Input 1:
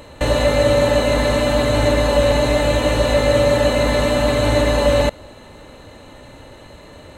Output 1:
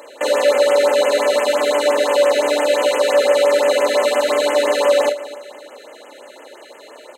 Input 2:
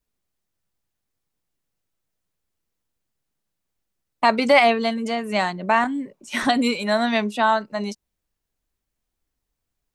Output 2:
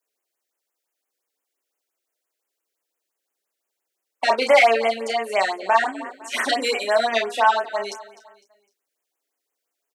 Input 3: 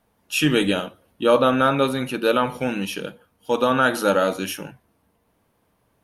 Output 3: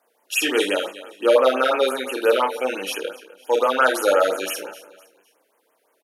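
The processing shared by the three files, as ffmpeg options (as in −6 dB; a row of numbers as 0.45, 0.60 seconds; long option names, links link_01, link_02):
-filter_complex "[0:a]asplit=2[link_01][link_02];[link_02]aecho=0:1:253|506|759:0.126|0.0478|0.0182[link_03];[link_01][link_03]amix=inputs=2:normalize=0,acontrast=81,highpass=frequency=380:width=0.5412,highpass=frequency=380:width=1.3066,asplit=2[link_04][link_05];[link_05]aecho=0:1:31|48:0.562|0.237[link_06];[link_04][link_06]amix=inputs=2:normalize=0,afftfilt=real='re*(1-between(b*sr/1024,880*pow(4700/880,0.5+0.5*sin(2*PI*5.8*pts/sr))/1.41,880*pow(4700/880,0.5+0.5*sin(2*PI*5.8*pts/sr))*1.41))':imag='im*(1-between(b*sr/1024,880*pow(4700/880,0.5+0.5*sin(2*PI*5.8*pts/sr))/1.41,880*pow(4700/880,0.5+0.5*sin(2*PI*5.8*pts/sr))*1.41))':win_size=1024:overlap=0.75,volume=-4.5dB"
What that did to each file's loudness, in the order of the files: +0.5, +0.5, +0.5 LU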